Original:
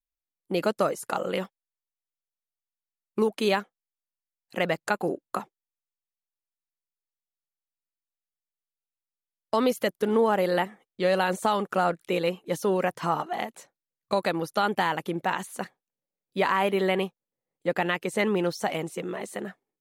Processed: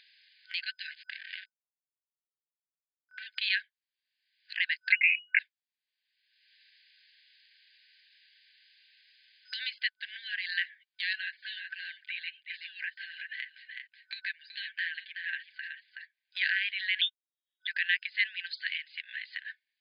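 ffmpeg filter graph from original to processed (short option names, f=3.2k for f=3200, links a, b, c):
-filter_complex "[0:a]asettb=1/sr,asplit=3[a][b][c];[a]atrim=end=0.924[d];[b]atrim=start=0.92:end=3.27,asetpts=PTS-STARTPTS,afade=t=in:d=0.004:c=qsin,afade=t=out:st=2.346:d=0.004:c=qsin,acompressor=threshold=-28dB:ratio=3:attack=3.2:release=140:knee=1:detection=peak,aeval=exprs='(tanh(20*val(0)+0.8)-tanh(0.8))/20':c=same,aeval=exprs='sgn(val(0))*max(abs(val(0))-0.00631,0)':c=same[e];[c]atrim=start=3.266[f];[d][e]acrossfade=d=0.004:c1=hsin:c2=qsin[g];[g][f]acrossfade=d=0.004:c1=qsin:c2=hsin,asettb=1/sr,asplit=3[h][i][j];[h]atrim=end=4.924[k];[i]atrim=start=4.92:end=5.39,asetpts=PTS-STARTPTS,afade=t=in:d=0.004:c=qsin,afade=t=out:st=0.466:d=0.004:c=qsin,aeval=exprs='if(lt(val(0),0),0.708*val(0),val(0))':c=same,equalizer=f=780:t=o:w=0.6:g=8,lowpass=f=2.5k:t=q:w=0.5098,lowpass=f=2.5k:t=q:w=0.6013,lowpass=f=2.5k:t=q:w=0.9,lowpass=f=2.5k:t=q:w=2.563,afreqshift=-2900[l];[j]atrim=start=5.386[m];[k][l]acrossfade=d=0.004:c1=hsin:c2=qsin[n];[n][m]acrossfade=d=0.004:c1=qsin:c2=hsin,asettb=1/sr,asplit=3[o][p][q];[o]atrim=end=11.134[r];[p]atrim=start=11.13:end=16.37,asetpts=PTS-STARTPTS,afade=t=in:d=0.004:c=qsin,afade=t=out:st=5.236:d=0.004:c=qsin,lowpass=f=1.2k:p=1,aecho=1:1:7:0.5,atrim=end_sample=231084,aecho=1:1:374:0.299,atrim=end_sample=231084[s];[q]atrim=start=16.366[t];[r][s]acrossfade=d=0.004:c1=hsin:c2=qsin[u];[u][t]acrossfade=d=0.004:c1=qsin:c2=hsin,asettb=1/sr,asplit=3[v][w][x];[v]atrim=end=17.014[y];[w]atrim=start=17.01:end=17.67,asetpts=PTS-STARTPTS,afade=t=in:d=0.004:c=qsin,afade=t=out:st=0.656:d=0.004:c=qsin,lowpass=f=3.2k:t=q:w=0.5098,lowpass=f=3.2k:t=q:w=0.6013,lowpass=f=3.2k:t=q:w=0.9,lowpass=f=3.2k:t=q:w=2.563,afreqshift=-3800,agate=range=-21dB:threshold=-37dB:ratio=16:release=100:detection=peak[z];[x]atrim=start=17.666[aa];[y][z]acrossfade=d=0.004:c1=hsin:c2=qsin[ab];[ab][aa]acrossfade=d=0.004:c1=qsin:c2=hsin,afftfilt=real='re*between(b*sr/4096,1500,5000)':imag='im*between(b*sr/4096,1500,5000)':win_size=4096:overlap=0.75,acompressor=mode=upward:threshold=-36dB:ratio=2.5,volume=2.5dB"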